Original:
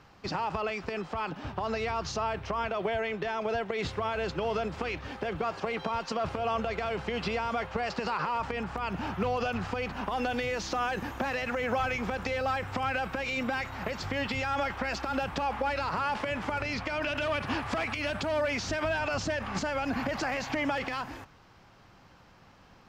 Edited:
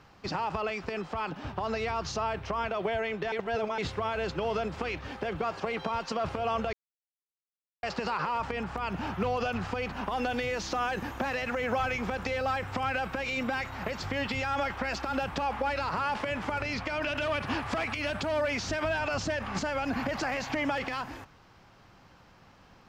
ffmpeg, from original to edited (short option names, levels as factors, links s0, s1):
-filter_complex "[0:a]asplit=5[s0][s1][s2][s3][s4];[s0]atrim=end=3.322[s5];[s1]atrim=start=3.318:end=3.782,asetpts=PTS-STARTPTS,areverse[s6];[s2]atrim=start=3.778:end=6.73,asetpts=PTS-STARTPTS,afade=t=out:st=2.948:d=0.004:c=hsin[s7];[s3]atrim=start=6.73:end=7.83,asetpts=PTS-STARTPTS,volume=0[s8];[s4]atrim=start=7.83,asetpts=PTS-STARTPTS,afade=t=in:d=0.004:c=hsin[s9];[s5][s6]acrossfade=d=0.004:c1=hsin:c2=hsin[s10];[s7][s8][s9]concat=n=3:v=0:a=1[s11];[s10][s11]acrossfade=d=0.004:c1=hsin:c2=hsin"